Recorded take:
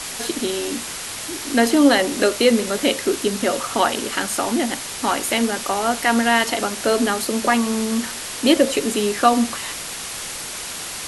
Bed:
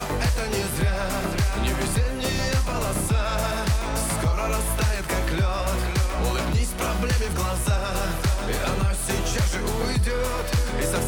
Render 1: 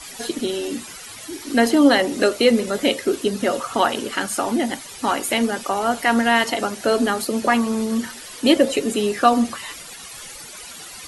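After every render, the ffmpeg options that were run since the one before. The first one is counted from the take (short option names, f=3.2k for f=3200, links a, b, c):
-af "afftdn=nr=13:nf=-31"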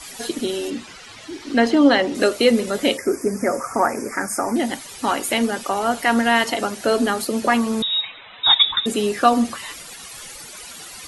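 -filter_complex "[0:a]asettb=1/sr,asplit=3[a][b][c];[a]atrim=end=0.704[d];[b]atrim=start=0.7:end=2.15,asetpts=PTS-STARTPTS,afade=t=in:d=0.004:c=qsin,afade=t=out:st=1.446:d=0.004:c=qsin,lowpass=5k[e];[c]atrim=start=2.146[f];[d][e]acrossfade=d=0.004:c1=hsin:c2=qsin[g];[g][f]acrossfade=d=0.004:c1=qsin:c2=hsin,asettb=1/sr,asplit=3[h][i][j];[h]atrim=end=2.974[k];[i]atrim=start=2.97:end=4.56,asetpts=PTS-STARTPTS,afade=t=in:d=0.004:c=qsin,afade=t=out:st=1.586:d=0.004:c=qsin,asuperstop=centerf=3400:order=12:qfactor=1.4[l];[j]atrim=start=4.556[m];[k][l]acrossfade=d=0.004:c1=hsin:c2=qsin[n];[n][m]acrossfade=d=0.004:c1=qsin:c2=hsin,asettb=1/sr,asplit=3[o][p][q];[o]atrim=end=7.824[r];[p]atrim=start=7.82:end=8.86,asetpts=PTS-STARTPTS,afade=t=in:d=0.004:c=qsin,afade=t=out:st=1.036:d=0.004:c=qsin,lowpass=f=3.4k:t=q:w=0.5098,lowpass=f=3.4k:t=q:w=0.6013,lowpass=f=3.4k:t=q:w=0.9,lowpass=f=3.4k:t=q:w=2.563,afreqshift=-4000[s];[q]atrim=start=8.856[t];[r][s]acrossfade=d=0.004:c1=hsin:c2=qsin[u];[u][t]acrossfade=d=0.004:c1=qsin:c2=hsin"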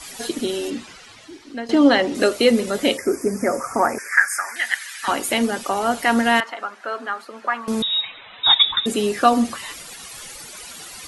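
-filter_complex "[0:a]asettb=1/sr,asplit=3[a][b][c];[a]atrim=end=3.984[d];[b]atrim=start=3.98:end=5.08,asetpts=PTS-STARTPTS,afade=t=in:d=0.004:c=qsin,afade=t=out:st=1.096:d=0.004:c=qsin,highpass=f=1.7k:t=q:w=5[e];[c]atrim=start=5.076[f];[d][e]acrossfade=d=0.004:c1=hsin:c2=qsin[g];[g][f]acrossfade=d=0.004:c1=qsin:c2=hsin,asettb=1/sr,asplit=3[h][i][j];[h]atrim=end=6.404[k];[i]atrim=start=6.4:end=7.68,asetpts=PTS-STARTPTS,afade=t=in:d=0.004:c=qsin,afade=t=out:st=1.276:d=0.004:c=qsin,bandpass=f=1.3k:t=q:w=1.9[l];[j]atrim=start=7.676[m];[k][l]acrossfade=d=0.004:c1=hsin:c2=qsin[n];[n][m]acrossfade=d=0.004:c1=qsin:c2=hsin,asplit=2[o][p];[o]atrim=end=1.69,asetpts=PTS-STARTPTS,afade=t=out:st=0.72:d=0.97:silence=0.133352[q];[p]atrim=start=1.69,asetpts=PTS-STARTPTS,afade=t=in:d=0.004:c=hsin:silence=0.133352[r];[q][r]concat=n=2:v=0:a=1"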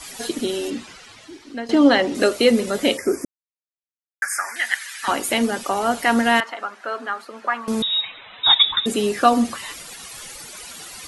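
-filter_complex "[0:a]asplit=3[a][b][c];[a]atrim=end=3.25,asetpts=PTS-STARTPTS,afade=t=out:st=3.246:d=0.004:c=hsin[d];[b]atrim=start=3.25:end=4.22,asetpts=PTS-STARTPTS,volume=0[e];[c]atrim=start=4.22,asetpts=PTS-STARTPTS,afade=t=in:d=0.004:c=hsin[f];[d][e][f]concat=n=3:v=0:a=1"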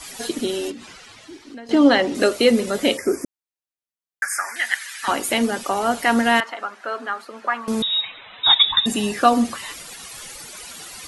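-filter_complex "[0:a]asettb=1/sr,asplit=3[a][b][c];[a]atrim=end=0.714[d];[b]atrim=start=0.71:end=1.71,asetpts=PTS-STARTPTS,afade=t=in:d=0.004:c=qsin,afade=t=out:st=0.996:d=0.004:c=qsin,acompressor=threshold=-33dB:ratio=6:attack=3.2:release=140:knee=1:detection=peak[e];[c]atrim=start=1.706[f];[d][e]acrossfade=d=0.004:c1=hsin:c2=qsin[g];[g][f]acrossfade=d=0.004:c1=qsin:c2=hsin,asettb=1/sr,asplit=3[h][i][j];[h]atrim=end=8.684[k];[i]atrim=start=8.68:end=9.14,asetpts=PTS-STARTPTS,afade=t=in:d=0.004:c=qsin,afade=t=out:st=0.456:d=0.004:c=qsin,aecho=1:1:1.1:0.62,atrim=end_sample=20286[l];[j]atrim=start=9.136[m];[k][l]acrossfade=d=0.004:c1=hsin:c2=qsin[n];[n][m]acrossfade=d=0.004:c1=qsin:c2=hsin"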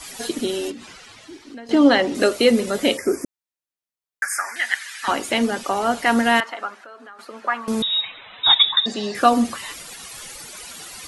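-filter_complex "[0:a]asettb=1/sr,asplit=3[a][b][c];[a]atrim=end=4.424[d];[b]atrim=start=4.42:end=6.06,asetpts=PTS-STARTPTS,afade=t=in:d=0.004:c=qsin,afade=t=out:st=1.636:d=0.004:c=qsin,acrossover=split=7800[e][f];[f]acompressor=threshold=-44dB:ratio=4:attack=1:release=60[g];[e][g]amix=inputs=2:normalize=0[h];[c]atrim=start=6.056[i];[d][h]acrossfade=d=0.004:c1=hsin:c2=qsin[j];[j][i]acrossfade=d=0.004:c1=qsin:c2=hsin,asettb=1/sr,asplit=3[k][l][m];[k]atrim=end=6.784[n];[l]atrim=start=6.78:end=7.19,asetpts=PTS-STARTPTS,afade=t=in:d=0.004:c=qsin,afade=t=out:st=0.406:d=0.004:c=qsin,acompressor=threshold=-43dB:ratio=3:attack=3.2:release=140:knee=1:detection=peak[o];[m]atrim=start=7.186[p];[n][o]acrossfade=d=0.004:c1=hsin:c2=qsin[q];[q][p]acrossfade=d=0.004:c1=qsin:c2=hsin,asettb=1/sr,asplit=3[r][s][t];[r]atrim=end=8.694[u];[s]atrim=start=8.69:end=9.15,asetpts=PTS-STARTPTS,afade=t=in:d=0.004:c=qsin,afade=t=out:st=0.456:d=0.004:c=qsin,highpass=240,equalizer=f=270:t=q:w=4:g=-7,equalizer=f=580:t=q:w=4:g=4,equalizer=f=930:t=q:w=4:g=-5,equalizer=f=2.7k:t=q:w=4:g=-10,equalizer=f=4.6k:t=q:w=4:g=8,lowpass=f=5.8k:w=0.5412,lowpass=f=5.8k:w=1.3066[v];[t]atrim=start=9.146[w];[u][v]acrossfade=d=0.004:c1=hsin:c2=qsin[x];[x][w]acrossfade=d=0.004:c1=qsin:c2=hsin"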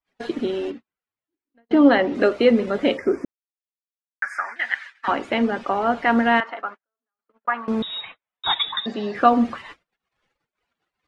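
-af "agate=range=-48dB:threshold=-32dB:ratio=16:detection=peak,lowpass=2.2k"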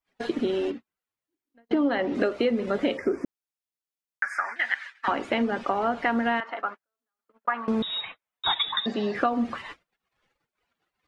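-af "acompressor=threshold=-21dB:ratio=6"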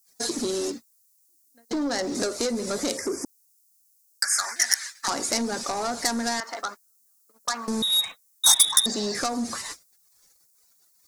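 -af "asoftclip=type=tanh:threshold=-22dB,aexciter=amount=14:drive=8.8:freq=4.7k"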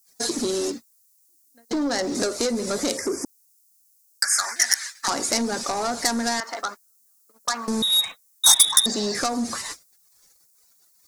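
-af "volume=2.5dB,alimiter=limit=-1dB:level=0:latency=1"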